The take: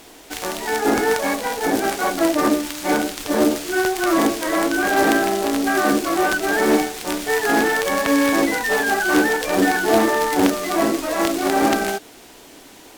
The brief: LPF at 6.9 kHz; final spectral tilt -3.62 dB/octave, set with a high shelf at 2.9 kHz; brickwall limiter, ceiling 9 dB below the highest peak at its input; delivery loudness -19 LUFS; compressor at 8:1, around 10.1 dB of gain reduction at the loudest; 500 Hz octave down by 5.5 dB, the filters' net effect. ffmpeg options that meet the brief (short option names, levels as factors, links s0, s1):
-af "lowpass=6900,equalizer=f=500:t=o:g=-7.5,highshelf=f=2900:g=-5,acompressor=threshold=0.0501:ratio=8,volume=3.76,alimiter=limit=0.335:level=0:latency=1"